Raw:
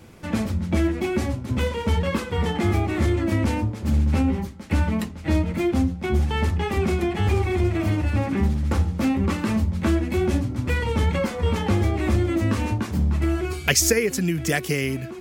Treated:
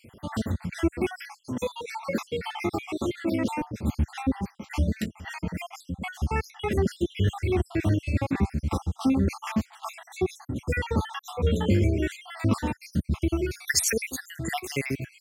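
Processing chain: random spectral dropouts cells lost 62%; HPF 61 Hz 12 dB/oct, from 1.49 s 220 Hz, from 3.61 s 67 Hz

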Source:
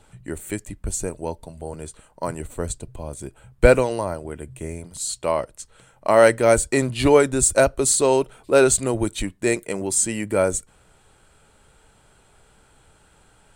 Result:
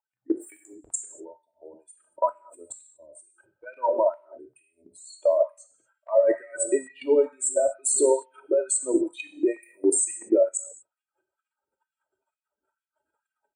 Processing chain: spectral contrast raised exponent 2.5; dynamic EQ 1200 Hz, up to +4 dB, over -31 dBFS, Q 0.93; comb 3.2 ms, depth 77%; limiter -9 dBFS, peak gain reduction 8 dB; level quantiser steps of 24 dB; non-linear reverb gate 0.26 s falling, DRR 5.5 dB; LFO high-pass sine 2.2 Hz 340–2400 Hz

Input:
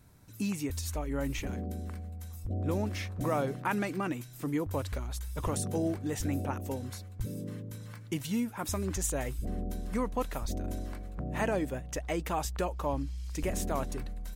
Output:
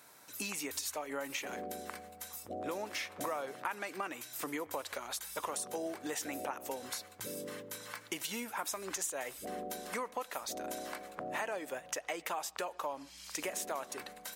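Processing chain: HPF 610 Hz 12 dB/oct; compressor 5:1, threshold -45 dBFS, peak gain reduction 16 dB; on a send: reverb, pre-delay 3 ms, DRR 21 dB; on the sum: gain +9 dB

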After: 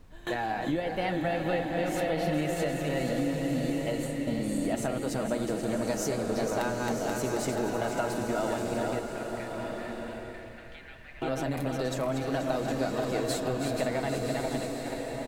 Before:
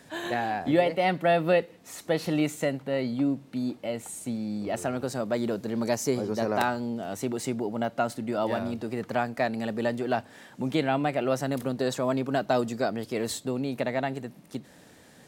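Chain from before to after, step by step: regenerating reverse delay 0.241 s, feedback 71%, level -6.5 dB; gate with hold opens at -23 dBFS; comb 6.3 ms, depth 34%; compressor, threshold -27 dBFS, peak gain reduction 11 dB; 8.99–11.22 ladder band-pass 2400 Hz, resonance 40%; added noise brown -50 dBFS; bloom reverb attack 1.25 s, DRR 3.5 dB

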